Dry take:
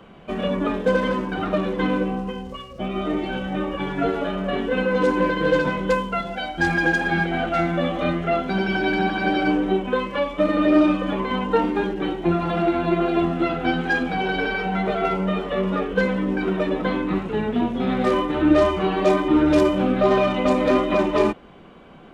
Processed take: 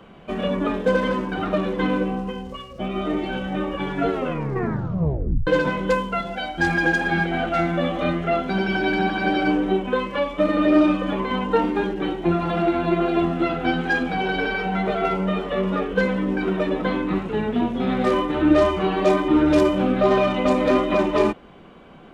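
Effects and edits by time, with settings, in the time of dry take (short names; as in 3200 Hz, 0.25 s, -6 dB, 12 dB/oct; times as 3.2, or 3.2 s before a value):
4.11 tape stop 1.36 s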